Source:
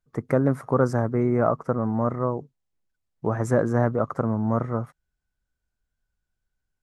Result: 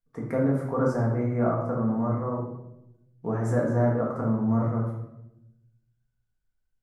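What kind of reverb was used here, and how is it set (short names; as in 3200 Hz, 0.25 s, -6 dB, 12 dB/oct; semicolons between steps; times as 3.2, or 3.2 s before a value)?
shoebox room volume 280 m³, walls mixed, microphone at 1.7 m; gain -9.5 dB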